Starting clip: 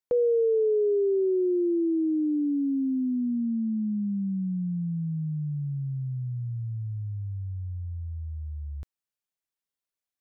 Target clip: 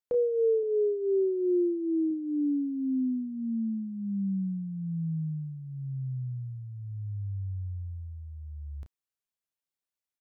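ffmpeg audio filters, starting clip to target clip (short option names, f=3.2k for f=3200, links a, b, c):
-filter_complex "[0:a]asettb=1/sr,asplit=3[a][b][c];[a]atrim=end=0.634[d];[b]atrim=start=0.63:end=2.11,asetpts=PTS-STARTPTS,afade=t=in:d=0.004:c=qsin,afade=t=out:st=1.476:d=0.004:c=qsin,lowshelf=f=110:g=8[e];[c]atrim=start=2.106[f];[d][e]acrossfade=d=0.004:c1=hsin:c2=qsin[g];[g][f]acrossfade=d=0.004:c1=qsin:c2=hsin,aecho=1:1:11|31:0.141|0.398,volume=-4dB"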